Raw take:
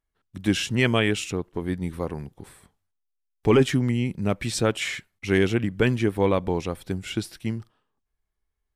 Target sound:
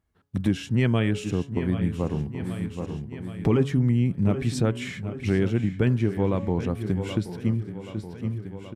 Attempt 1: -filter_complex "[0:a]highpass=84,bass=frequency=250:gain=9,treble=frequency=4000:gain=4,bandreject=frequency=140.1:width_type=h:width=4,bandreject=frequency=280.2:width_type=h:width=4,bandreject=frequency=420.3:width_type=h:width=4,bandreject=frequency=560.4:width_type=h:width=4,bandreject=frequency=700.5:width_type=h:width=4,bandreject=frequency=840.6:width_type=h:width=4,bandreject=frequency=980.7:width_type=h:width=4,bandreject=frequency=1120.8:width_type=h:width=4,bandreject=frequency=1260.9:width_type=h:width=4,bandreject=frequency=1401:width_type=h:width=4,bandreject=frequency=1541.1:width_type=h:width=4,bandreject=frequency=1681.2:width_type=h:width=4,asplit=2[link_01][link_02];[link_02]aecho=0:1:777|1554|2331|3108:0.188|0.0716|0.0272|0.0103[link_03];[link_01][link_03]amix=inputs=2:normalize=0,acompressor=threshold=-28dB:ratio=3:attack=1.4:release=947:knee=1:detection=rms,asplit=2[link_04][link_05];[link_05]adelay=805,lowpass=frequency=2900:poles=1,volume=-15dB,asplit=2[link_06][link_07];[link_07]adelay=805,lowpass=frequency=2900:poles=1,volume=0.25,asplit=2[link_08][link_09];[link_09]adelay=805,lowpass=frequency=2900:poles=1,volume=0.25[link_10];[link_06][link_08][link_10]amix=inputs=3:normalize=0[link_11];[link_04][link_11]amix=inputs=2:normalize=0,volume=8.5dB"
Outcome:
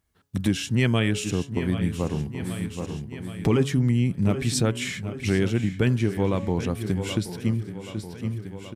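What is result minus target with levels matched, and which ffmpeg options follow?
8,000 Hz band +9.5 dB
-filter_complex "[0:a]highpass=84,bass=frequency=250:gain=9,treble=frequency=4000:gain=4,bandreject=frequency=140.1:width_type=h:width=4,bandreject=frequency=280.2:width_type=h:width=4,bandreject=frequency=420.3:width_type=h:width=4,bandreject=frequency=560.4:width_type=h:width=4,bandreject=frequency=700.5:width_type=h:width=4,bandreject=frequency=840.6:width_type=h:width=4,bandreject=frequency=980.7:width_type=h:width=4,bandreject=frequency=1120.8:width_type=h:width=4,bandreject=frequency=1260.9:width_type=h:width=4,bandreject=frequency=1401:width_type=h:width=4,bandreject=frequency=1541.1:width_type=h:width=4,bandreject=frequency=1681.2:width_type=h:width=4,asplit=2[link_01][link_02];[link_02]aecho=0:1:777|1554|2331|3108:0.188|0.0716|0.0272|0.0103[link_03];[link_01][link_03]amix=inputs=2:normalize=0,acompressor=threshold=-28dB:ratio=3:attack=1.4:release=947:knee=1:detection=rms,highshelf=frequency=2900:gain=-11.5,asplit=2[link_04][link_05];[link_05]adelay=805,lowpass=frequency=2900:poles=1,volume=-15dB,asplit=2[link_06][link_07];[link_07]adelay=805,lowpass=frequency=2900:poles=1,volume=0.25,asplit=2[link_08][link_09];[link_09]adelay=805,lowpass=frequency=2900:poles=1,volume=0.25[link_10];[link_06][link_08][link_10]amix=inputs=3:normalize=0[link_11];[link_04][link_11]amix=inputs=2:normalize=0,volume=8.5dB"

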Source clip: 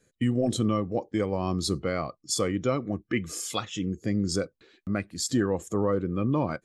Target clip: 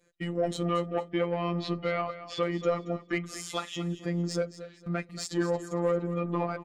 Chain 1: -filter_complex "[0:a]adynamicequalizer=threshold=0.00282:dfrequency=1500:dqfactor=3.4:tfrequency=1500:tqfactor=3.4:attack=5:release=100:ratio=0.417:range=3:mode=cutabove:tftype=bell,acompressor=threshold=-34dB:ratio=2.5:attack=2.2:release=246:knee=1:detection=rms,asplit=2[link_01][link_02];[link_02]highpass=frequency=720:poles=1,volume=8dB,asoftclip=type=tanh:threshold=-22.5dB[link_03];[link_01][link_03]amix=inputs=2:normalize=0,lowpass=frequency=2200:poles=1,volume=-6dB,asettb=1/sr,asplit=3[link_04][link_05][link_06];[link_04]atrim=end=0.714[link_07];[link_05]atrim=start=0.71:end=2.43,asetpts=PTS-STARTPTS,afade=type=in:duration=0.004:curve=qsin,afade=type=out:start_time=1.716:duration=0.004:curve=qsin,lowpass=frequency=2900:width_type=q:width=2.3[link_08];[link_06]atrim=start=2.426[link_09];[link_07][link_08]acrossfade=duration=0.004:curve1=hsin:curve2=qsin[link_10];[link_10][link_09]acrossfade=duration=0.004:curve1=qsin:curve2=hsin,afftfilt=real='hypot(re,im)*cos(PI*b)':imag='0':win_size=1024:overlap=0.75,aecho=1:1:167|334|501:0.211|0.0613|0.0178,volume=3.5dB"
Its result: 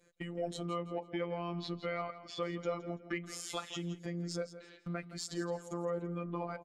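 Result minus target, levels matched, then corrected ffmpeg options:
downward compressor: peak gain reduction +11.5 dB; echo 61 ms early
-filter_complex "[0:a]adynamicequalizer=threshold=0.00282:dfrequency=1500:dqfactor=3.4:tfrequency=1500:tqfactor=3.4:attack=5:release=100:ratio=0.417:range=3:mode=cutabove:tftype=bell,asplit=2[link_01][link_02];[link_02]highpass=frequency=720:poles=1,volume=8dB,asoftclip=type=tanh:threshold=-22.5dB[link_03];[link_01][link_03]amix=inputs=2:normalize=0,lowpass=frequency=2200:poles=1,volume=-6dB,asettb=1/sr,asplit=3[link_04][link_05][link_06];[link_04]atrim=end=0.714[link_07];[link_05]atrim=start=0.71:end=2.43,asetpts=PTS-STARTPTS,afade=type=in:duration=0.004:curve=qsin,afade=type=out:start_time=1.716:duration=0.004:curve=qsin,lowpass=frequency=2900:width_type=q:width=2.3[link_08];[link_06]atrim=start=2.426[link_09];[link_07][link_08]acrossfade=duration=0.004:curve1=hsin:curve2=qsin[link_10];[link_10][link_09]acrossfade=duration=0.004:curve1=qsin:curve2=hsin,afftfilt=real='hypot(re,im)*cos(PI*b)':imag='0':win_size=1024:overlap=0.75,aecho=1:1:228|456|684:0.211|0.0613|0.0178,volume=3.5dB"

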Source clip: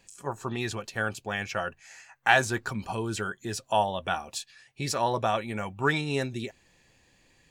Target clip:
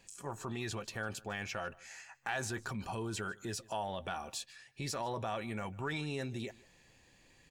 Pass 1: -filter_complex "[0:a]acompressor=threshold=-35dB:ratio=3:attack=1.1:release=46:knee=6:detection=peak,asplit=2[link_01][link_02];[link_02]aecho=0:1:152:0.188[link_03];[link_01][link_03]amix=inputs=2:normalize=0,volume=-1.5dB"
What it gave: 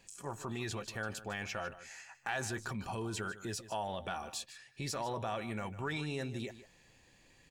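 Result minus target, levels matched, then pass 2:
echo-to-direct +8 dB
-filter_complex "[0:a]acompressor=threshold=-35dB:ratio=3:attack=1.1:release=46:knee=6:detection=peak,asplit=2[link_01][link_02];[link_02]aecho=0:1:152:0.075[link_03];[link_01][link_03]amix=inputs=2:normalize=0,volume=-1.5dB"

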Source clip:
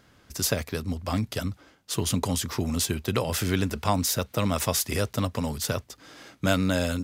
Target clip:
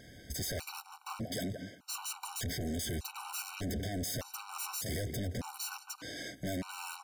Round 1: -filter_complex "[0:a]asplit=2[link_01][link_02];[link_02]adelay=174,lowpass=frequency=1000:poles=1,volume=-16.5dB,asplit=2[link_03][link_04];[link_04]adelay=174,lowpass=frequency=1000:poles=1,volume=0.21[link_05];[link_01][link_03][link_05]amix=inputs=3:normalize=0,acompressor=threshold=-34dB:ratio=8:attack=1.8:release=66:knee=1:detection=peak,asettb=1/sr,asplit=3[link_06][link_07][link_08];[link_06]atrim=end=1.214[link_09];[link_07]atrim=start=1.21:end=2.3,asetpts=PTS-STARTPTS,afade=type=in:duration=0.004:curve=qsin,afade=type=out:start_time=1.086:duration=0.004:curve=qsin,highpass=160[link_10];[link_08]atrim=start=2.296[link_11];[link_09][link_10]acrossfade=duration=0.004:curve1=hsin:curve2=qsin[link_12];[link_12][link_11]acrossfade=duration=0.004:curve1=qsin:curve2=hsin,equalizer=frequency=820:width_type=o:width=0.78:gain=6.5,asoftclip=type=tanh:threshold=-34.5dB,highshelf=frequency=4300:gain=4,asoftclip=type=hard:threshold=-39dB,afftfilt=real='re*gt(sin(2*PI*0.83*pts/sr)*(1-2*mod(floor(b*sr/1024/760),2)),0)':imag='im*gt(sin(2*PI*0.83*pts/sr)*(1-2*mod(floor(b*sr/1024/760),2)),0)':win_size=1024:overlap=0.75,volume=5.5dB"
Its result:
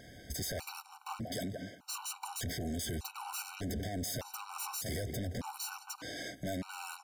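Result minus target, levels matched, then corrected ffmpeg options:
downward compressor: peak gain reduction +5 dB; 1,000 Hz band +2.0 dB
-filter_complex "[0:a]asplit=2[link_01][link_02];[link_02]adelay=174,lowpass=frequency=1000:poles=1,volume=-16.5dB,asplit=2[link_03][link_04];[link_04]adelay=174,lowpass=frequency=1000:poles=1,volume=0.21[link_05];[link_01][link_03][link_05]amix=inputs=3:normalize=0,acompressor=threshold=-28dB:ratio=8:attack=1.8:release=66:knee=1:detection=peak,asettb=1/sr,asplit=3[link_06][link_07][link_08];[link_06]atrim=end=1.214[link_09];[link_07]atrim=start=1.21:end=2.3,asetpts=PTS-STARTPTS,afade=type=in:duration=0.004:curve=qsin,afade=type=out:start_time=1.086:duration=0.004:curve=qsin,highpass=160[link_10];[link_08]atrim=start=2.296[link_11];[link_09][link_10]acrossfade=duration=0.004:curve1=hsin:curve2=qsin[link_12];[link_12][link_11]acrossfade=duration=0.004:curve1=qsin:curve2=hsin,asoftclip=type=tanh:threshold=-34.5dB,highshelf=frequency=4300:gain=4,asoftclip=type=hard:threshold=-39dB,afftfilt=real='re*gt(sin(2*PI*0.83*pts/sr)*(1-2*mod(floor(b*sr/1024/760),2)),0)':imag='im*gt(sin(2*PI*0.83*pts/sr)*(1-2*mod(floor(b*sr/1024/760),2)),0)':win_size=1024:overlap=0.75,volume=5.5dB"

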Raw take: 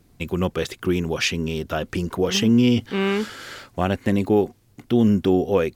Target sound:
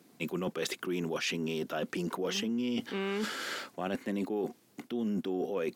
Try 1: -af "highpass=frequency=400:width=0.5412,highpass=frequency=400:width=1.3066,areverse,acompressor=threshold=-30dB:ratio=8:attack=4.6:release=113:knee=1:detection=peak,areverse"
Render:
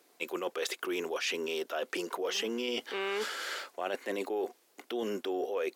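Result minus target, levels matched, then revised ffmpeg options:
250 Hz band −6.0 dB
-af "highpass=frequency=190:width=0.5412,highpass=frequency=190:width=1.3066,areverse,acompressor=threshold=-30dB:ratio=8:attack=4.6:release=113:knee=1:detection=peak,areverse"

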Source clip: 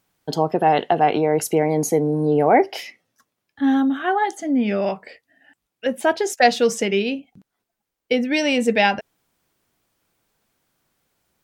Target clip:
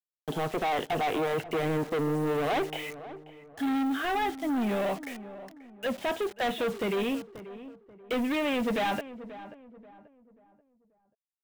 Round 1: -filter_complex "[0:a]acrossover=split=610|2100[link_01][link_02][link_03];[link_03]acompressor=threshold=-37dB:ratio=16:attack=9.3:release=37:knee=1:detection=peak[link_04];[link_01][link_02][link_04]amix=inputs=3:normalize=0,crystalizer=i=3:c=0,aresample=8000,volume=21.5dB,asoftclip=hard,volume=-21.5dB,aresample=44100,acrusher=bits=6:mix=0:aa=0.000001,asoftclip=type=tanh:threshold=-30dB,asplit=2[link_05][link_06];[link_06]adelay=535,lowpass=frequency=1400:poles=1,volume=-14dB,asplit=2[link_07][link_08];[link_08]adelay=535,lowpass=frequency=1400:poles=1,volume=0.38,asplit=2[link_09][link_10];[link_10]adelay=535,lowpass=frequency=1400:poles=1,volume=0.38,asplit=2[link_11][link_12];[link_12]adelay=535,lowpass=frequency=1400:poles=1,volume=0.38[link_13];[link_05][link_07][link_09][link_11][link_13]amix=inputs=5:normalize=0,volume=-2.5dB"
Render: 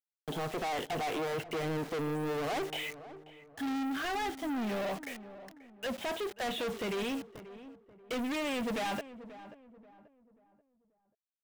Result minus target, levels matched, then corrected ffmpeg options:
soft clipping: distortion +12 dB; downward compressor: peak gain reduction −6.5 dB
-filter_complex "[0:a]acrossover=split=610|2100[link_01][link_02][link_03];[link_03]acompressor=threshold=-44dB:ratio=16:attack=9.3:release=37:knee=1:detection=peak[link_04];[link_01][link_02][link_04]amix=inputs=3:normalize=0,crystalizer=i=3:c=0,aresample=8000,volume=21.5dB,asoftclip=hard,volume=-21.5dB,aresample=44100,acrusher=bits=6:mix=0:aa=0.000001,asoftclip=type=tanh:threshold=-20.5dB,asplit=2[link_05][link_06];[link_06]adelay=535,lowpass=frequency=1400:poles=1,volume=-14dB,asplit=2[link_07][link_08];[link_08]adelay=535,lowpass=frequency=1400:poles=1,volume=0.38,asplit=2[link_09][link_10];[link_10]adelay=535,lowpass=frequency=1400:poles=1,volume=0.38,asplit=2[link_11][link_12];[link_12]adelay=535,lowpass=frequency=1400:poles=1,volume=0.38[link_13];[link_05][link_07][link_09][link_11][link_13]amix=inputs=5:normalize=0,volume=-2.5dB"

